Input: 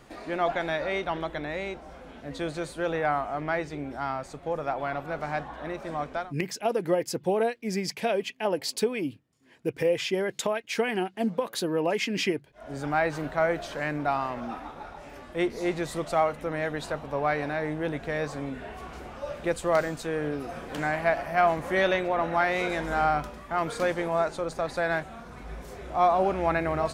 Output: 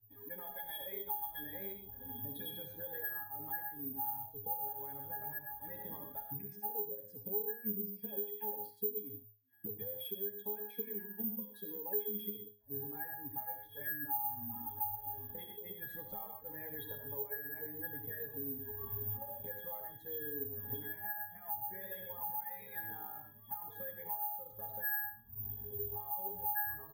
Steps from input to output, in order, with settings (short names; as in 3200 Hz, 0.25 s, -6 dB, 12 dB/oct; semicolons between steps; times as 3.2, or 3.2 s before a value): per-bin expansion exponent 2; recorder AGC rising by 36 dB/s; 22.29–24.53 HPF 160 Hz 12 dB/oct; comb 7.2 ms, depth 54%; limiter -20.5 dBFS, peak gain reduction 9 dB; octave resonator G#, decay 0.31 s; reverb, pre-delay 25 ms, DRR 5 dB; careless resampling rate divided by 3×, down none, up zero stuff; three-band squash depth 70%